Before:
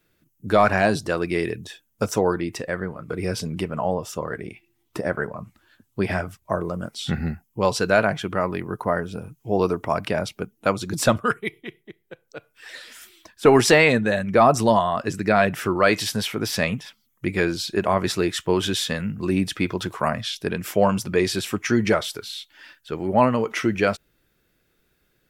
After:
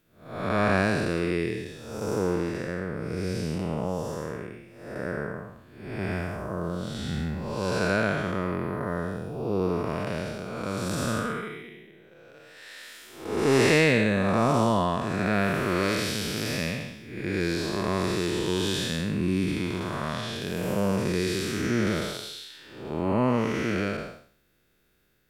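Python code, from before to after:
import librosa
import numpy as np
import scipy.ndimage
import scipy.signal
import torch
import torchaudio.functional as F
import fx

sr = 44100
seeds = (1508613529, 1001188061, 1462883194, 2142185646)

y = fx.spec_blur(x, sr, span_ms=329.0)
y = fx.dynamic_eq(y, sr, hz=720.0, q=2.3, threshold_db=-39.0, ratio=4.0, max_db=-6)
y = y * 10.0 ** (1.0 / 20.0)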